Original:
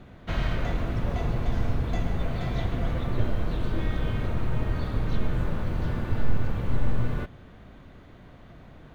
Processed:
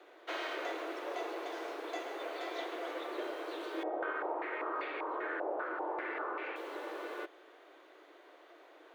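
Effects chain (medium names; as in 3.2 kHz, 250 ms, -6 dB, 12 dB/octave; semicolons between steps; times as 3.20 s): steep high-pass 310 Hz 96 dB/octave; 3.83–6.56 s: step-sequenced low-pass 5.1 Hz 730–2400 Hz; trim -3 dB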